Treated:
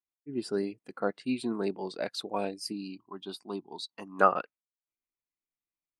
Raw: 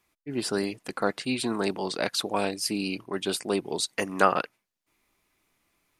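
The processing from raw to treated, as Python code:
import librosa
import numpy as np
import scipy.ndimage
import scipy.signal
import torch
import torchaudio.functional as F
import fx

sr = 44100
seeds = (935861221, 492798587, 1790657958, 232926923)

y = fx.graphic_eq(x, sr, hz=(125, 500, 1000, 2000, 4000, 8000), db=(-6, -10, 8, -11, 4, -8), at=(2.72, 4.19))
y = fx.spectral_expand(y, sr, expansion=1.5)
y = y * librosa.db_to_amplitude(-2.0)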